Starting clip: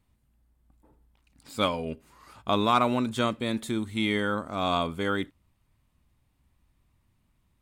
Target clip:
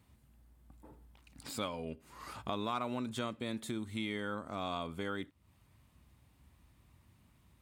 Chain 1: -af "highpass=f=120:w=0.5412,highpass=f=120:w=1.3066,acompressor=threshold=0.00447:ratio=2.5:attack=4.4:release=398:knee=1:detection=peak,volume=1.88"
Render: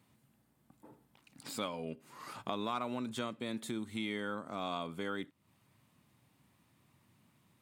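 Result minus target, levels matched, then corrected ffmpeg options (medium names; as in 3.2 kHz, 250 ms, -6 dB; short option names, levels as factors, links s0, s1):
125 Hz band -3.0 dB
-af "highpass=f=51:w=0.5412,highpass=f=51:w=1.3066,acompressor=threshold=0.00447:ratio=2.5:attack=4.4:release=398:knee=1:detection=peak,volume=1.88"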